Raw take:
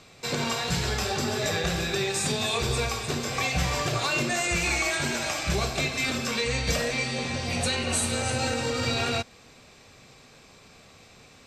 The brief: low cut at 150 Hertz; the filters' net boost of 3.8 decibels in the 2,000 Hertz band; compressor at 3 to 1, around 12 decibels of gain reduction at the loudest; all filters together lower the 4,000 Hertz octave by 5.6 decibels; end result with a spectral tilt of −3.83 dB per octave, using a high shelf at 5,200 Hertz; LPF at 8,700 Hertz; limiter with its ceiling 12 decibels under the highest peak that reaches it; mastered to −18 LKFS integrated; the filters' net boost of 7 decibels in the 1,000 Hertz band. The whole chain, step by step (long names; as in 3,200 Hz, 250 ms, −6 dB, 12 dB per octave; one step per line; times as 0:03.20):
high-pass filter 150 Hz
low-pass filter 8,700 Hz
parametric band 1,000 Hz +8.5 dB
parametric band 2,000 Hz +5.5 dB
parametric band 4,000 Hz −5.5 dB
high-shelf EQ 5,200 Hz −8.5 dB
downward compressor 3 to 1, threshold −37 dBFS
level +24 dB
brickwall limiter −9.5 dBFS